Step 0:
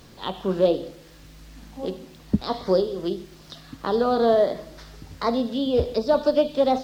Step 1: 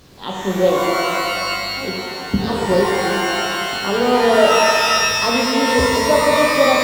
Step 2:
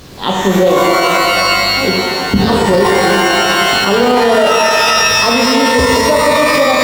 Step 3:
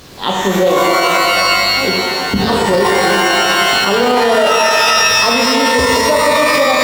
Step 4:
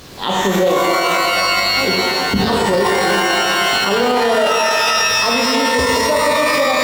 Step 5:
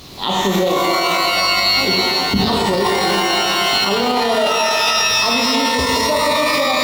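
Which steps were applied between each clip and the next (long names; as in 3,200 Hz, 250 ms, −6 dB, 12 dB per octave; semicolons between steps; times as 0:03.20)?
reverb with rising layers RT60 2.5 s, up +12 semitones, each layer −2 dB, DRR −2.5 dB; level +1 dB
boost into a limiter +12.5 dB; level −1 dB
low-shelf EQ 360 Hz −5.5 dB
brickwall limiter −6.5 dBFS, peak gain reduction 5 dB
thirty-one-band graphic EQ 500 Hz −6 dB, 1,600 Hz −9 dB, 4,000 Hz +5 dB, 8,000 Hz −4 dB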